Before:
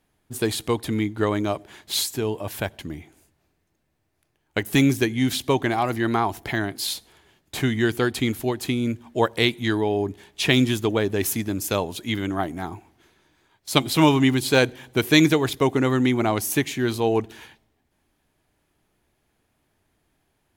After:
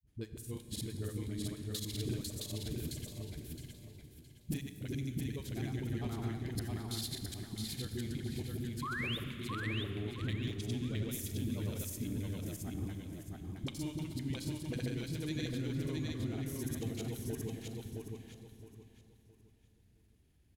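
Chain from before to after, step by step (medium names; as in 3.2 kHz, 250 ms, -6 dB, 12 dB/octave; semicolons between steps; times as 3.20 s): slices played last to first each 84 ms, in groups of 3; high-pass 46 Hz; amplifier tone stack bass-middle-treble 10-0-1; compression 10:1, threshold -51 dBFS, peak gain reduction 19.5 dB; granulator, pitch spread up and down by 0 st; painted sound rise, 8.78–9.13 s, 1–3.8 kHz -55 dBFS; phase dispersion highs, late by 47 ms, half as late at 330 Hz; on a send: feedback delay 666 ms, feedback 29%, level -3 dB; on the sum: Schroeder reverb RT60 3.1 s, combs from 29 ms, DRR 9 dB; trim +15.5 dB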